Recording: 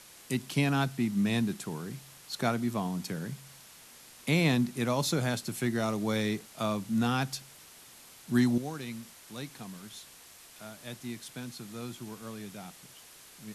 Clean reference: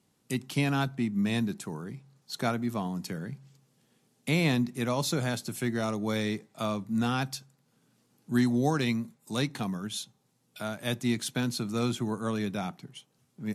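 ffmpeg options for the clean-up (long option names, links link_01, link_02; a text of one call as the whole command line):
ffmpeg -i in.wav -af "afwtdn=0.0028,asetnsamples=nb_out_samples=441:pad=0,asendcmd='8.58 volume volume 11.5dB',volume=0dB" out.wav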